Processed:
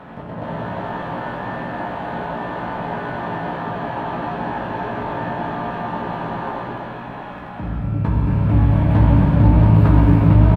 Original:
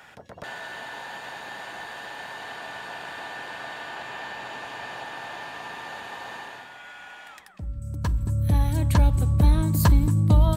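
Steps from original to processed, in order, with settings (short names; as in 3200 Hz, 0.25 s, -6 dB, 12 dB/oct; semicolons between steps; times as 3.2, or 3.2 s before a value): per-bin compression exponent 0.6; HPF 110 Hz 12 dB/oct; bell 3900 Hz -8 dB 0.47 oct; in parallel at -3.5 dB: sample-rate reducer 2500 Hz, jitter 0%; on the sum: air absorption 490 m; doubler 17 ms -5 dB; non-linear reverb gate 0.48 s flat, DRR -4.5 dB; Doppler distortion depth 0.24 ms; gain -2.5 dB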